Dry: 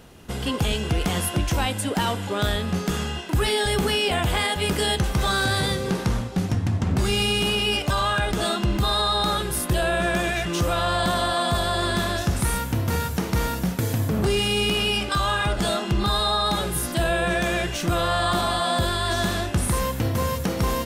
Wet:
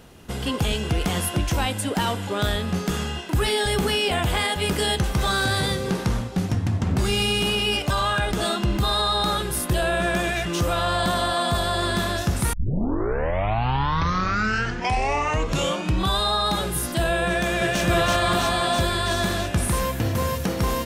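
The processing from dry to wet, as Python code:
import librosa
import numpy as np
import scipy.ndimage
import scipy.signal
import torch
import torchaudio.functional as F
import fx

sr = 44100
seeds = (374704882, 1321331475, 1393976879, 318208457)

y = fx.echo_throw(x, sr, start_s=17.28, length_s=0.55, ms=330, feedback_pct=75, wet_db=-1.0)
y = fx.edit(y, sr, fx.tape_start(start_s=12.53, length_s=3.74), tone=tone)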